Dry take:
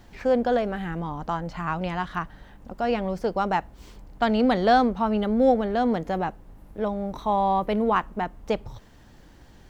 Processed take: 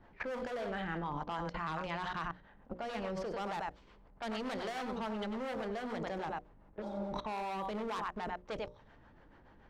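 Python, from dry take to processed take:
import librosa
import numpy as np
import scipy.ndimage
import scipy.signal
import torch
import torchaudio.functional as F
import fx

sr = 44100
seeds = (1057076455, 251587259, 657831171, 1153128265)

y = x + 10.0 ** (-10.0 / 20.0) * np.pad(x, (int(94 * sr / 1000.0), 0))[:len(x)]
y = np.clip(10.0 ** (23.0 / 20.0) * y, -1.0, 1.0) / 10.0 ** (23.0 / 20.0)
y = fx.low_shelf(y, sr, hz=310.0, db=-8.0)
y = fx.env_lowpass(y, sr, base_hz=1500.0, full_db=-24.0)
y = fx.harmonic_tremolo(y, sr, hz=7.0, depth_pct=50, crossover_hz=440.0)
y = fx.level_steps(y, sr, step_db=22)
y = fx.hum_notches(y, sr, base_hz=60, count=10)
y = fx.spec_repair(y, sr, seeds[0], start_s=6.84, length_s=0.22, low_hz=260.0, high_hz=3200.0, source='after')
y = fx.notch(y, sr, hz=740.0, q=18.0)
y = y * 10.0 ** (6.5 / 20.0)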